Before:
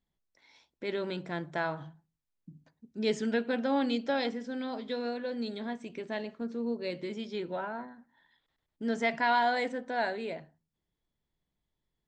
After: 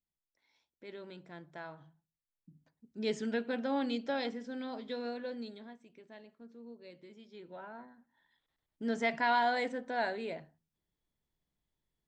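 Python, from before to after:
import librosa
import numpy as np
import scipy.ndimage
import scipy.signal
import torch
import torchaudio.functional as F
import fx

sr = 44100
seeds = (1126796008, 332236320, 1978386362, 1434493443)

y = fx.gain(x, sr, db=fx.line((1.88, -13.5), (3.06, -4.5), (5.29, -4.5), (5.83, -17.0), (7.26, -17.0), (7.7, -10.0), (8.87, -2.5)))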